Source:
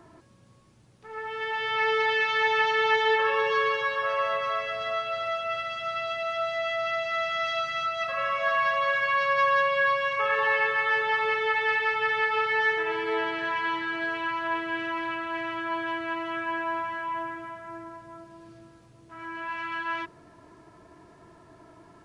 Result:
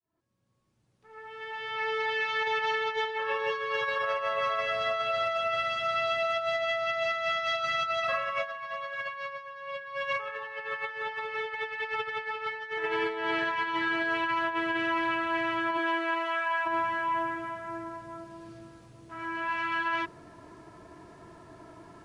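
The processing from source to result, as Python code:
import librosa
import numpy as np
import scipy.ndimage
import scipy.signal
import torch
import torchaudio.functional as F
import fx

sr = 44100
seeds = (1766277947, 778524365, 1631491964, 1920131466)

y = fx.fade_in_head(x, sr, length_s=5.19)
y = fx.highpass(y, sr, hz=fx.line((15.77, 210.0), (16.65, 730.0)), slope=24, at=(15.77, 16.65), fade=0.02)
y = fx.over_compress(y, sr, threshold_db=-30.0, ratio=-0.5)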